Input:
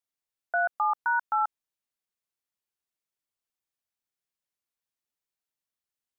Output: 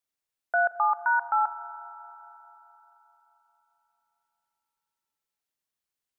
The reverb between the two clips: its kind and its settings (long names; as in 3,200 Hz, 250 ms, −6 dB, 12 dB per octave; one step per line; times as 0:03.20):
spring reverb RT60 3.9 s, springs 37/43 ms, chirp 60 ms, DRR 13.5 dB
level +2 dB